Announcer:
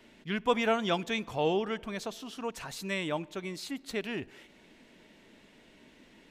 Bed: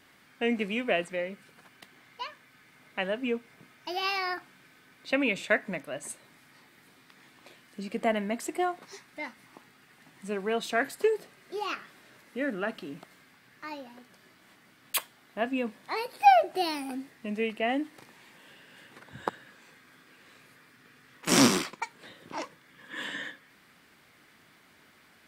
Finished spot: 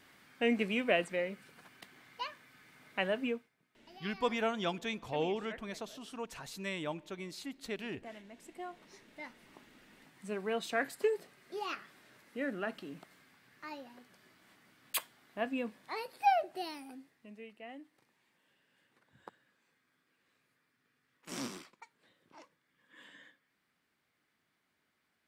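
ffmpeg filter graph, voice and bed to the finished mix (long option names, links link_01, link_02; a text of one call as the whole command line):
ffmpeg -i stem1.wav -i stem2.wav -filter_complex "[0:a]adelay=3750,volume=-5.5dB[link_01];[1:a]volume=14.5dB,afade=type=out:start_time=3.2:duration=0.3:silence=0.1,afade=type=in:start_time=8.37:duration=1.38:silence=0.149624,afade=type=out:start_time=15.48:duration=1.94:silence=0.188365[link_02];[link_01][link_02]amix=inputs=2:normalize=0" out.wav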